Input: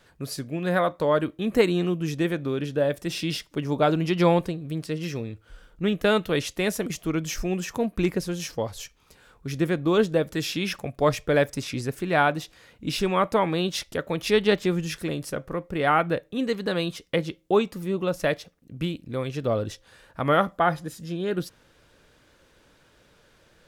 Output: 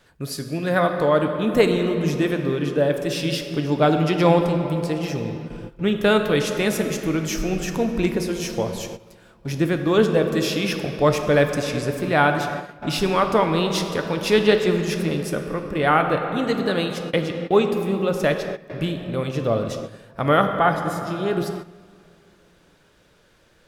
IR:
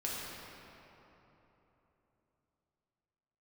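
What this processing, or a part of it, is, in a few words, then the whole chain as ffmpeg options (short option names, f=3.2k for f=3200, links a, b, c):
keyed gated reverb: -filter_complex "[0:a]asplit=3[a][b][c];[1:a]atrim=start_sample=2205[d];[b][d]afir=irnorm=-1:irlink=0[e];[c]apad=whole_len=1044008[f];[e][f]sidechaingate=range=-14dB:threshold=-50dB:ratio=16:detection=peak,volume=-5dB[g];[a][g]amix=inputs=2:normalize=0"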